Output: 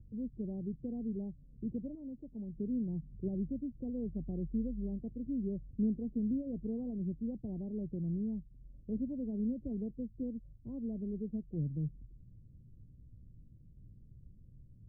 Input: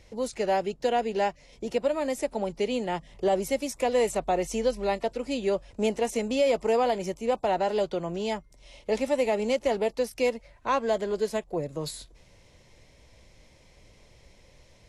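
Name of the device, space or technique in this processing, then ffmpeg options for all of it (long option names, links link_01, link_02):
the neighbour's flat through the wall: -filter_complex "[0:a]lowpass=frequency=250:width=0.5412,lowpass=frequency=250:width=1.3066,equalizer=frequency=120:width_type=o:width=0.75:gain=6.5,asettb=1/sr,asplit=3[link_01][link_02][link_03];[link_01]atrim=end=1.954[link_04];[link_02]atrim=start=1.95:end=2.55,asetpts=PTS-STARTPTS,afade=type=in:duration=0.004:curve=qsin,afade=type=out:start_time=0.596:duration=0.004:curve=qsin,tiltshelf=frequency=1100:gain=-6.5[link_05];[link_03]atrim=start=2.546[link_06];[link_04][link_05]acrossfade=duration=0.004:curve1=hsin:curve2=qsin[link_07];[link_07][link_06]acrossfade=duration=0.004:curve1=qsin:curve2=hsin"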